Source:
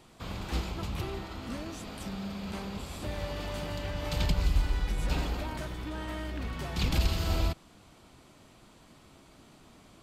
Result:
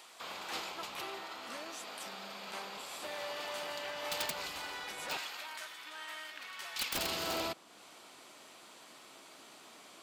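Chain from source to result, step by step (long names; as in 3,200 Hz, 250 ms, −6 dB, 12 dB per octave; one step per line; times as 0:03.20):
high-pass filter 650 Hz 12 dB per octave, from 0:05.17 1,400 Hz, from 0:06.95 390 Hz
wrap-around overflow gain 27 dB
one half of a high-frequency compander encoder only
level +1 dB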